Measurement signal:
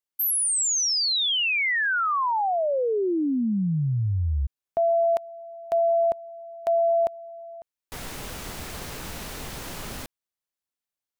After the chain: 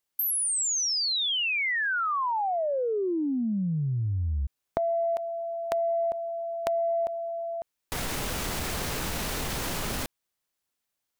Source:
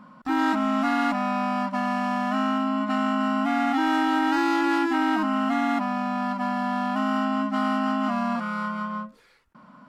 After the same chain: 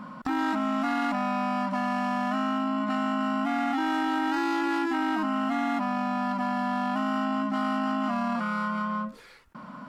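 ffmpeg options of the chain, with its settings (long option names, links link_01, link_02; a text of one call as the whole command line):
ffmpeg -i in.wav -af "acompressor=threshold=-40dB:ratio=3:attack=13:release=27:knee=1:detection=peak,volume=7.5dB" out.wav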